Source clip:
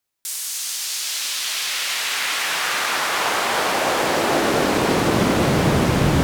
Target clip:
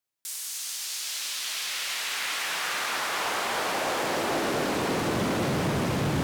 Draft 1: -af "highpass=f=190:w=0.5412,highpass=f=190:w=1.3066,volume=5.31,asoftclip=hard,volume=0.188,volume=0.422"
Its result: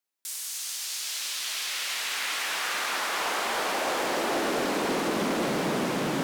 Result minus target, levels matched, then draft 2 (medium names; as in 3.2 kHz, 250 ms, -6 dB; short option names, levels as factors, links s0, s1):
125 Hz band -8.0 dB
-af "highpass=f=76:w=0.5412,highpass=f=76:w=1.3066,volume=5.31,asoftclip=hard,volume=0.188,volume=0.422"